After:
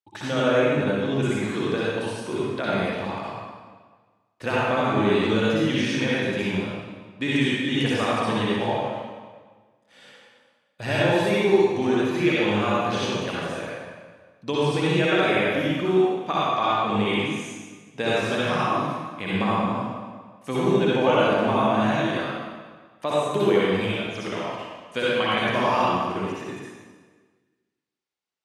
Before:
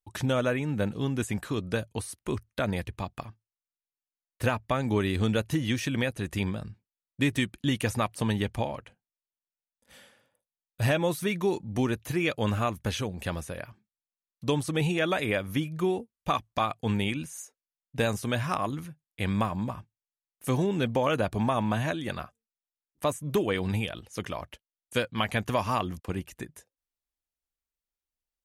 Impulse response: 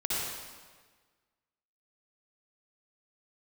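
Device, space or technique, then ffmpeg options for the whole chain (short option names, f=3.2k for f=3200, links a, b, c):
supermarket ceiling speaker: -filter_complex "[0:a]highpass=200,lowpass=5.5k[a];[1:a]atrim=start_sample=2205[b];[a][b]afir=irnorm=-1:irlink=0"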